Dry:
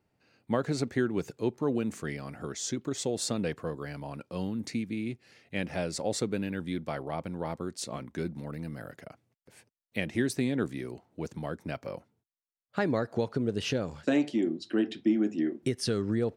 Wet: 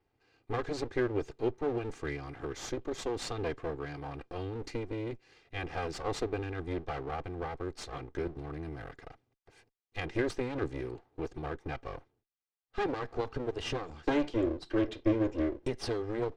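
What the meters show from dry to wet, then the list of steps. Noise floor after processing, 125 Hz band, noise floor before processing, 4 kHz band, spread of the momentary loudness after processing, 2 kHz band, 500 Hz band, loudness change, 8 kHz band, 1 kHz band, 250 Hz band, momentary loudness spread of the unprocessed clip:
-84 dBFS, -3.5 dB, under -85 dBFS, -4.5 dB, 10 LU, -2.5 dB, -1.5 dB, -3.5 dB, -10.5 dB, +1.0 dB, -5.0 dB, 11 LU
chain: comb filter that takes the minimum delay 2.5 ms; distance through air 94 m

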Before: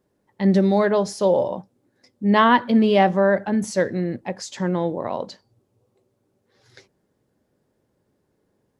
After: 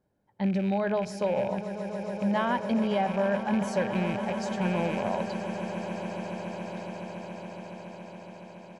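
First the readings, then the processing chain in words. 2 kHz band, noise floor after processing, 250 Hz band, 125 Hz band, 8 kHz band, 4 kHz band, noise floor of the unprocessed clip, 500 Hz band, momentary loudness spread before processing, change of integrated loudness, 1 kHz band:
-8.0 dB, -49 dBFS, -7.0 dB, -6.0 dB, -9.5 dB, -9.0 dB, -71 dBFS, -8.0 dB, 14 LU, -9.5 dB, -8.5 dB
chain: rattle on loud lows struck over -31 dBFS, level -21 dBFS; treble shelf 3.1 kHz -8.5 dB; comb 1.3 ms, depth 41%; compression, threshold -19 dBFS, peak gain reduction 8.5 dB; on a send: echo with a slow build-up 140 ms, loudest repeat 8, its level -15 dB; on the sum: trim -4.5 dB

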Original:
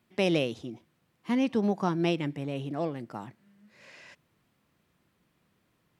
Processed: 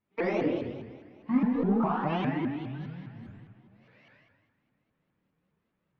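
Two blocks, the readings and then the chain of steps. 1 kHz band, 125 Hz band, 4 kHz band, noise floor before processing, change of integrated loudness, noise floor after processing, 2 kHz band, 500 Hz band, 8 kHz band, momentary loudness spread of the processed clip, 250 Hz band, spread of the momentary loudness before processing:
+2.5 dB, -0.5 dB, -10.5 dB, -73 dBFS, 0.0 dB, -79 dBFS, -1.5 dB, -2.0 dB, no reading, 20 LU, +1.0 dB, 17 LU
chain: spectral replace 2.34–3.34 s, 240–1500 Hz; spectral noise reduction 15 dB; waveshaping leveller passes 1; compression 4:1, threshold -34 dBFS, peak gain reduction 10.5 dB; distance through air 320 m; filtered feedback delay 81 ms, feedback 50%, low-pass 4.3 kHz, level -3.5 dB; two-slope reverb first 0.83 s, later 3.1 s, from -18 dB, DRR -7 dB; vibrato with a chosen wave saw up 4.9 Hz, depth 250 cents; trim +1.5 dB

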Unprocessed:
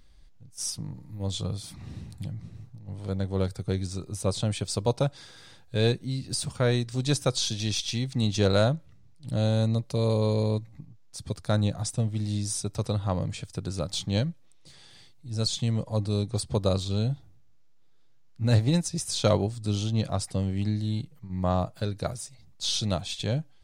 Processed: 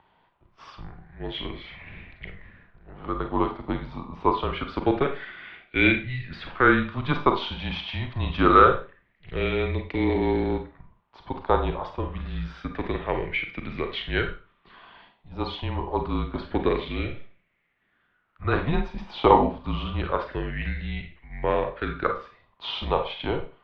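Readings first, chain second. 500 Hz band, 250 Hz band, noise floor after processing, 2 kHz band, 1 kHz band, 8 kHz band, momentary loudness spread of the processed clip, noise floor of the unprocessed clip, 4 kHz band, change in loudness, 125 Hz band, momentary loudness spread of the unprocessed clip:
+3.5 dB, +2.0 dB, -69 dBFS, +13.0 dB, +13.0 dB, under -35 dB, 18 LU, -53 dBFS, -2.5 dB, +2.5 dB, -6.0 dB, 13 LU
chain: mistuned SSB -140 Hz 200–3200 Hz; Schroeder reverb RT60 0.34 s, combs from 32 ms, DRR 5 dB; sweeping bell 0.26 Hz 880–2200 Hz +17 dB; trim +3 dB

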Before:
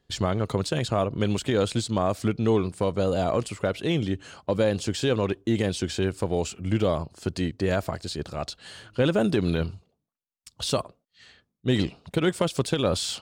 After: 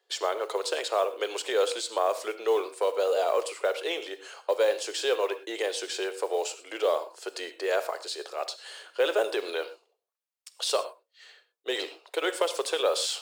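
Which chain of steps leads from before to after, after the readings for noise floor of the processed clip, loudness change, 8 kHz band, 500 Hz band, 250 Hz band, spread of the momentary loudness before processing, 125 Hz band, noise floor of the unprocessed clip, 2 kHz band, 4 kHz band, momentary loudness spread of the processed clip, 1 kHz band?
-82 dBFS, -2.5 dB, +0.5 dB, -0.5 dB, -16.0 dB, 8 LU, under -40 dB, -79 dBFS, +0.5 dB, +0.5 dB, 9 LU, +0.5 dB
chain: steep high-pass 400 Hz 48 dB/octave; modulation noise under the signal 30 dB; gated-style reverb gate 140 ms flat, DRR 11 dB

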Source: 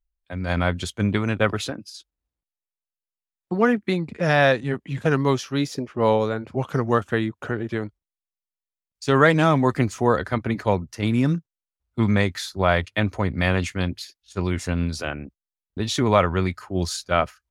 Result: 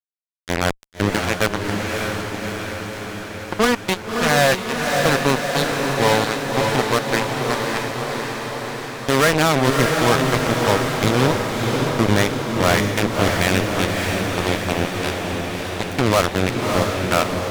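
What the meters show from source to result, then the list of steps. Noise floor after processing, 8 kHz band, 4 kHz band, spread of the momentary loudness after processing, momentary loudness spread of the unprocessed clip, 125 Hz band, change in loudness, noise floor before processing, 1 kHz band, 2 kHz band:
-34 dBFS, +10.5 dB, +9.0 dB, 10 LU, 12 LU, +1.0 dB, +3.0 dB, under -85 dBFS, +5.0 dB, +5.5 dB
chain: power-law waveshaper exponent 2; fuzz box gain 35 dB, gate -32 dBFS; echo that smears into a reverb 609 ms, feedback 69%, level -3 dB; trim +4 dB

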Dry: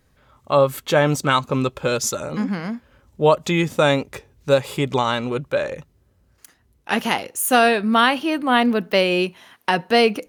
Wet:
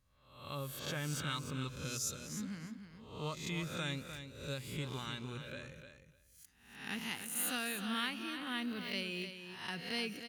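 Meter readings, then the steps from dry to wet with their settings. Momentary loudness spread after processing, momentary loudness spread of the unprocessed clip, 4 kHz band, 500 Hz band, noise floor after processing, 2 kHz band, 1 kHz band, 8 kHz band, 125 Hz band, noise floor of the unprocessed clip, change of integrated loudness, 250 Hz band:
12 LU, 9 LU, -15.0 dB, -28.0 dB, -68 dBFS, -18.5 dB, -25.5 dB, -12.5 dB, -16.0 dB, -61 dBFS, -20.0 dB, -19.5 dB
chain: reverse spectral sustain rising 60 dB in 0.66 s; amplifier tone stack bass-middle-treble 6-0-2; feedback delay 302 ms, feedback 15%, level -9 dB; trim -2 dB

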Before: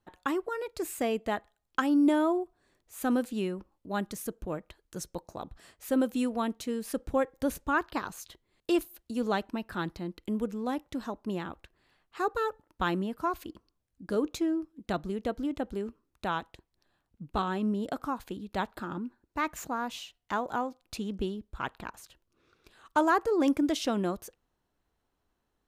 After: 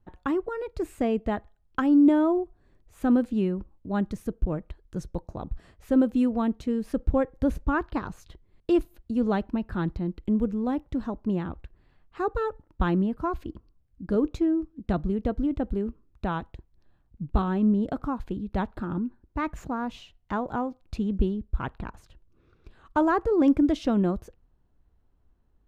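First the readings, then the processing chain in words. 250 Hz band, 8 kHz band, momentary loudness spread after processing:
+6.5 dB, under -10 dB, 13 LU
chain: RIAA curve playback

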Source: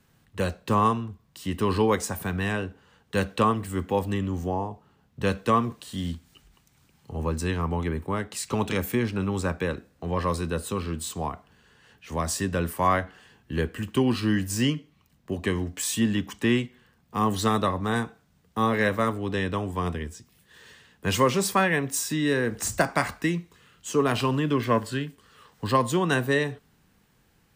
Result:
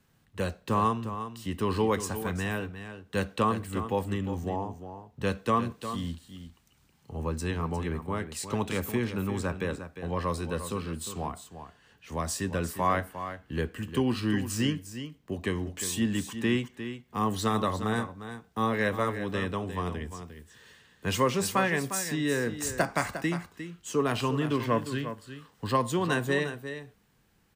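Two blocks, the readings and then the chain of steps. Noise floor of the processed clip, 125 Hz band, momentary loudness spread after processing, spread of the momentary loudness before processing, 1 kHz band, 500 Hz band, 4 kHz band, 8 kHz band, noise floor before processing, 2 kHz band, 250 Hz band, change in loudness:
-66 dBFS, -3.5 dB, 12 LU, 11 LU, -3.5 dB, -3.5 dB, -3.5 dB, -3.5 dB, -64 dBFS, -3.5 dB, -3.5 dB, -4.0 dB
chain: delay 354 ms -10.5 dB; trim -4 dB

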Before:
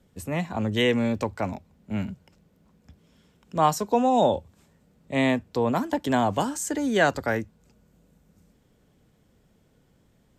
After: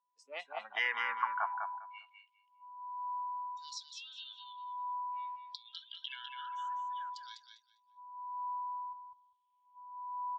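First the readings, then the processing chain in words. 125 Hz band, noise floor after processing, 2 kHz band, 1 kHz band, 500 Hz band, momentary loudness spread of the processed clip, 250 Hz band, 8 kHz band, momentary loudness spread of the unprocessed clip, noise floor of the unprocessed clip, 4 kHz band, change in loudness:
under -40 dB, -75 dBFS, -8.5 dB, -8.5 dB, under -25 dB, 17 LU, under -40 dB, -20.0 dB, 10 LU, -64 dBFS, -9.0 dB, -14.5 dB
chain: self-modulated delay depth 0.11 ms; treble shelf 4.1 kHz -7.5 dB; peak limiter -17.5 dBFS, peak gain reduction 9.5 dB; high-pass sweep 500 Hz -> 3.2 kHz, 0.26–2.33 s; whistle 990 Hz -40 dBFS; LFO band-pass saw down 0.56 Hz 570–6000 Hz; spectral noise reduction 23 dB; distance through air 110 m; on a send: feedback delay 201 ms, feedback 17%, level -5.5 dB; on the sum: trim +4 dB

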